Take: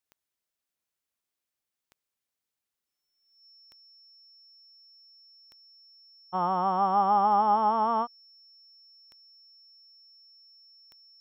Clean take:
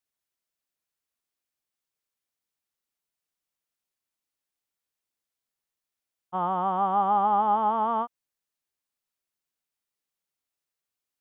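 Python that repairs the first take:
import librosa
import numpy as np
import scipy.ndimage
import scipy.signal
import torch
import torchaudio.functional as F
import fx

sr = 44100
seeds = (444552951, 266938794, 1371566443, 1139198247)

y = fx.fix_declick_ar(x, sr, threshold=10.0)
y = fx.notch(y, sr, hz=5400.0, q=30.0)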